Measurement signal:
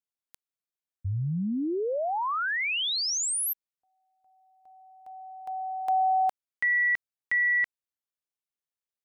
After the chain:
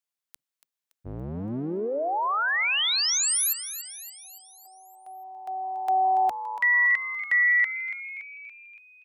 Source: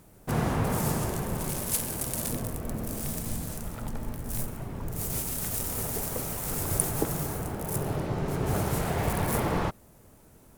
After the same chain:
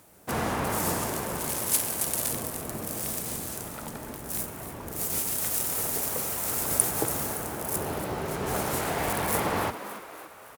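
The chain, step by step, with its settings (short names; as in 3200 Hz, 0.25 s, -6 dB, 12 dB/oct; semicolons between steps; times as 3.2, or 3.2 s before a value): octaver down 1 oct, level +3 dB; HPF 610 Hz 6 dB/oct; on a send: frequency-shifting echo 0.284 s, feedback 54%, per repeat +110 Hz, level -12 dB; on the sum: gain +4 dB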